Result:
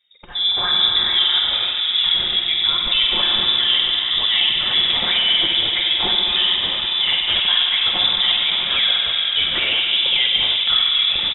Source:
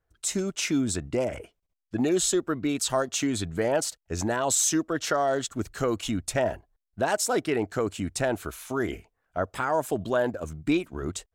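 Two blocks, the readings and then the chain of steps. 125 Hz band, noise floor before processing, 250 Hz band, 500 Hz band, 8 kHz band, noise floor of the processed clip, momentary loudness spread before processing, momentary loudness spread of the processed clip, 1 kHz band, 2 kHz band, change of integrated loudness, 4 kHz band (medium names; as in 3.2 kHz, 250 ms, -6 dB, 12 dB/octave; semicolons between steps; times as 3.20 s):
-7.0 dB, -80 dBFS, -11.0 dB, -10.0 dB, under -40 dB, -23 dBFS, 9 LU, 3 LU, +1.5 dB, +11.5 dB, +12.5 dB, +26.0 dB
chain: band-stop 1.2 kHz, Q 10; comb 5.7 ms, depth 63%; compression, threshold -26 dBFS, peak gain reduction 9.5 dB; peak limiter -26.5 dBFS, peak gain reduction 11 dB; level rider gain up to 5.5 dB; spring tank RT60 3.6 s, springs 47 ms, chirp 75 ms, DRR -1.5 dB; ever faster or slower copies 180 ms, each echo -6 st, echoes 3, each echo -6 dB; frequency inversion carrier 3.7 kHz; trim +8 dB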